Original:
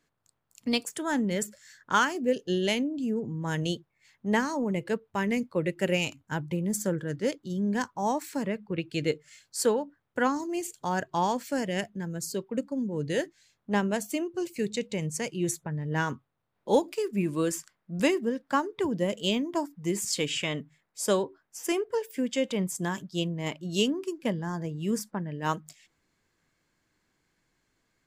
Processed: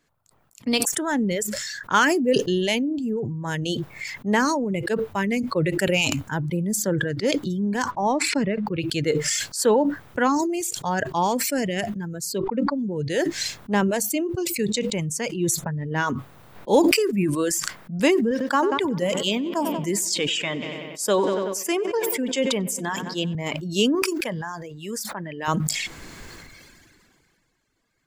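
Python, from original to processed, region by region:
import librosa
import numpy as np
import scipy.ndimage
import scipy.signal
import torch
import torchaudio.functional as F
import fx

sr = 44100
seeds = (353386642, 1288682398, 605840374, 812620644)

y = fx.chain(x, sr, fx.transient(attack_db=4, sustain_db=-4),
    fx.air_absorb(metres=110.0), at=(7.91, 8.67))
y = fx.chain(y, sr, fx.air_absorb(metres=150.0),
    fx.sustainer(db_per_s=71.0), at=(12.38, 12.79))
y = fx.chain(y, sr, fx.highpass(hz=250.0, slope=6),
    fx.echo_filtered(ms=94, feedback_pct=76, hz=4300.0, wet_db=-12), at=(18.31, 23.35))
y = fx.chain(y, sr, fx.highpass(hz=680.0, slope=6),
    fx.pre_swell(db_per_s=92.0), at=(23.95, 25.48))
y = fx.dereverb_blind(y, sr, rt60_s=1.6)
y = fx.sustainer(y, sr, db_per_s=25.0)
y = y * 10.0 ** (4.5 / 20.0)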